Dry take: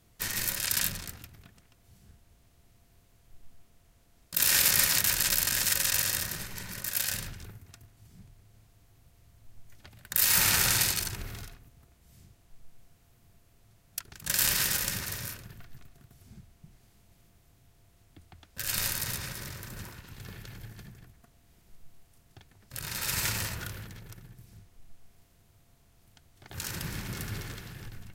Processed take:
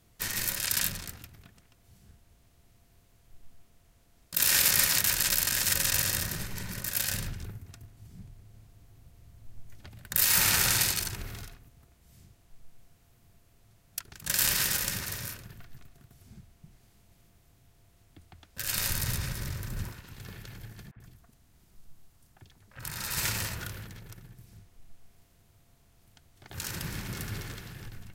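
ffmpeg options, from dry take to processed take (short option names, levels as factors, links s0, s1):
-filter_complex "[0:a]asettb=1/sr,asplit=3[s0][s1][s2];[s0]atrim=end=5.674[s3];[s1]atrim=start=5.67:end=10.23,asetpts=PTS-STARTPTS,afade=t=in:d=0.004:c=qsin,afade=t=out:st=4.556:d=0.004:c=qsin,lowshelf=f=420:g=6[s4];[s2]atrim=start=10.226[s5];[s3][s4]acrossfade=d=0.004:c1=hsin:c2=qsin[s6];[s6][s5]acrossfade=d=0.004:c1=qsin:c2=hsin,asettb=1/sr,asplit=3[s7][s8][s9];[s7]atrim=end=18.894[s10];[s8]atrim=start=18.89:end=19.93,asetpts=PTS-STARTPTS,afade=t=in:d=0.004:c=qsin,afade=t=out:st=1.036:d=0.004:c=qsin,lowshelf=f=150:g=12[s11];[s9]atrim=start=19.926[s12];[s10][s11]acrossfade=d=0.004:c1=hsin:c2=qsin[s13];[s13][s12]acrossfade=d=0.004:c1=qsin:c2=hsin,asettb=1/sr,asplit=3[s14][s15][s16];[s14]atrim=end=20.914[s17];[s15]atrim=start=20.91:end=23.18,asetpts=PTS-STARTPTS,afade=t=in:d=0.004:c=qsin,afade=t=out:st=2.266:d=0.004:c=qsin,acrossover=split=510|2400[s18][s19][s20];[s18]adelay=50[s21];[s20]adelay=90[s22];[s21][s19][s22]amix=inputs=3:normalize=0,atrim=end_sample=100107[s23];[s16]atrim=start=23.176[s24];[s17][s23]acrossfade=d=0.004:c1=hsin:c2=qsin[s25];[s25][s24]acrossfade=d=0.004:c1=qsin:c2=hsin"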